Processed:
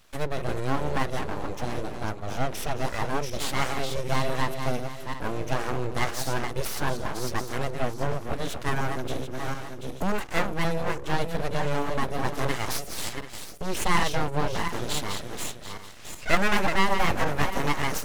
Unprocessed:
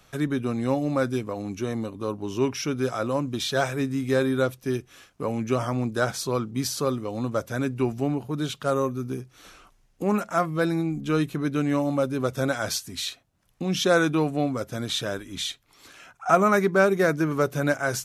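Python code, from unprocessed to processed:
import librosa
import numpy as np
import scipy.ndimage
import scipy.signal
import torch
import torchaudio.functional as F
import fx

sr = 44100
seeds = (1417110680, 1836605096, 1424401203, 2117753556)

y = fx.reverse_delay_fb(x, sr, ms=367, feedback_pct=44, wet_db=-6.5)
y = np.abs(y)
y = fx.band_squash(y, sr, depth_pct=70, at=(8.68, 10.2))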